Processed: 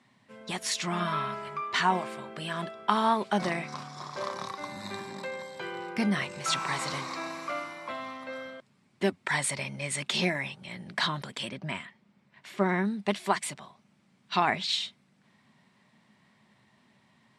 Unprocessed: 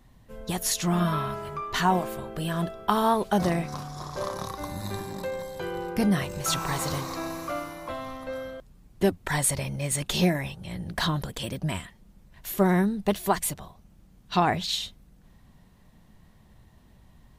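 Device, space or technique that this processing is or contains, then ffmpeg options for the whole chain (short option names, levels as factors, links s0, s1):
television speaker: -filter_complex "[0:a]asettb=1/sr,asplit=3[s0][s1][s2];[s0]atrim=end=11.494[s3];[s1]atrim=start=11.49:end=12.85,asetpts=PTS-STARTPTS,afade=t=in:d=0.004:c=qsin,afade=t=out:st=1.356:d=0.004:c=qsin,aemphasis=mode=reproduction:type=50kf[s4];[s2]atrim=start=12.846[s5];[s3][s4]acrossfade=d=0.004:c1=hsin:c2=qsin[s6];[s6][s5]acrossfade=d=0.004:c1=qsin:c2=hsin,highpass=f=160:w=0.5412,highpass=f=160:w=1.3066,equalizer=f=170:t=q:w=4:g=-8,equalizer=f=310:t=q:w=4:g=-8,equalizer=f=480:t=q:w=4:g=-8,equalizer=f=730:t=q:w=4:g=-4,equalizer=f=2200:t=q:w=4:g=6,equalizer=f=6500:t=q:w=4:g=-6,lowpass=f=8200:w=0.5412,lowpass=f=8200:w=1.3066"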